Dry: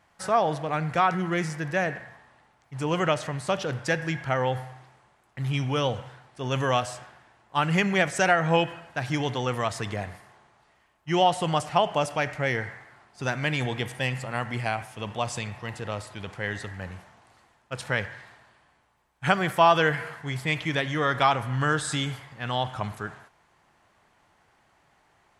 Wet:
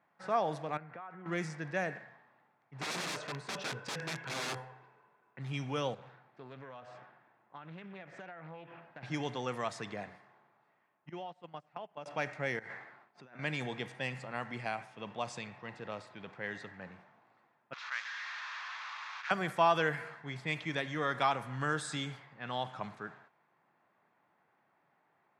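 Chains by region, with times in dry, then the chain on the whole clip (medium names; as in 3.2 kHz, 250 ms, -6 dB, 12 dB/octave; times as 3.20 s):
0.77–1.26 s: compression 20:1, threshold -31 dBFS + low-pass 1.9 kHz + bass shelf 320 Hz -9 dB
2.79–5.39 s: small resonant body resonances 440/1000/1500/2600 Hz, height 12 dB, ringing for 60 ms + integer overflow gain 23 dB
5.94–9.03 s: treble shelf 7.1 kHz -11 dB + compression 8:1, threshold -36 dBFS + loudspeaker Doppler distortion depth 0.4 ms
11.09–12.06 s: gate -24 dBFS, range -23 dB + compression 5:1, threshold -32 dBFS
12.59–13.39 s: expander -52 dBFS + bass shelf 130 Hz -8 dB + compressor with a negative ratio -42 dBFS
17.73–19.31 s: one-bit delta coder 64 kbps, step -24 dBFS + elliptic band-pass 1.1–6.5 kHz, stop band 70 dB + distance through air 61 m
whole clip: band-stop 3 kHz, Q 14; level-controlled noise filter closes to 2.2 kHz, open at -20.5 dBFS; high-pass 140 Hz 24 dB/octave; trim -8.5 dB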